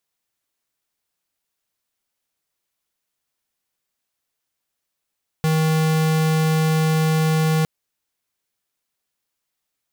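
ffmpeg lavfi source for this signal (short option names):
-f lavfi -i "aevalsrc='0.126*(2*lt(mod(158*t,1),0.5)-1)':d=2.21:s=44100"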